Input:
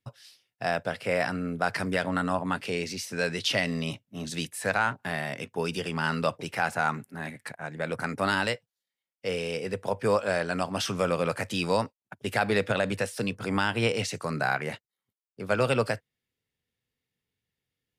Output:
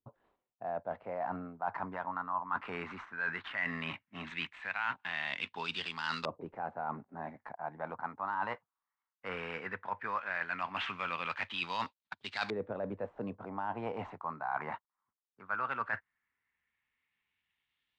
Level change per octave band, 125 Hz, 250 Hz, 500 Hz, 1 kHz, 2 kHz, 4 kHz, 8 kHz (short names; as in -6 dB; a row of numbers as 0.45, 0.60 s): -16.5 dB, -13.5 dB, -13.5 dB, -5.0 dB, -7.0 dB, -9.5 dB, under -25 dB